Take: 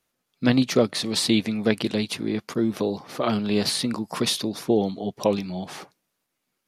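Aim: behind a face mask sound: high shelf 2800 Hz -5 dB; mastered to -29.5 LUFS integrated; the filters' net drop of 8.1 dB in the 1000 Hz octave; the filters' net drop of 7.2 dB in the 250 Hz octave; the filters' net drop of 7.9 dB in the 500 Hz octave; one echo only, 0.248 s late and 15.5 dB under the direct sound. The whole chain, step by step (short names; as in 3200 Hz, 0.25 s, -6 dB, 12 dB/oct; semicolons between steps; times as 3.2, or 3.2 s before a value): bell 250 Hz -7 dB; bell 500 Hz -5.5 dB; bell 1000 Hz -8 dB; high shelf 2800 Hz -5 dB; echo 0.248 s -15.5 dB; gain +1 dB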